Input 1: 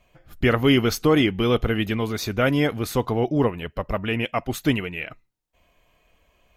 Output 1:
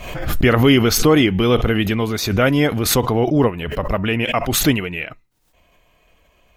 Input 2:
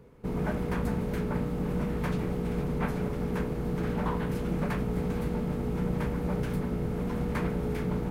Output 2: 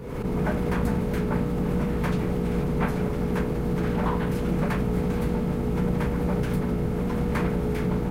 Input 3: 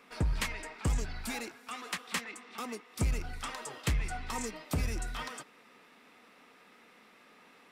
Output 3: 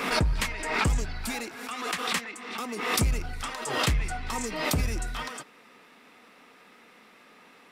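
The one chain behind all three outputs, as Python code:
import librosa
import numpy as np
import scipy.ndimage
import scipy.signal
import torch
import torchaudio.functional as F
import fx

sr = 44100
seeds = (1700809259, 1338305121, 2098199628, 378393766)

y = fx.pre_swell(x, sr, db_per_s=50.0)
y = y * 10.0 ** (4.5 / 20.0)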